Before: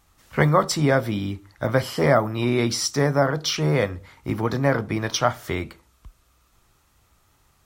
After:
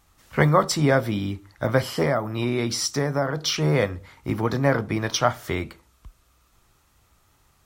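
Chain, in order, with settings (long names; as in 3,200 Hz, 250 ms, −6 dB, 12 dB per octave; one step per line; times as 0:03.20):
0:02.02–0:03.43: downward compressor 2.5 to 1, threshold −21 dBFS, peak gain reduction 6.5 dB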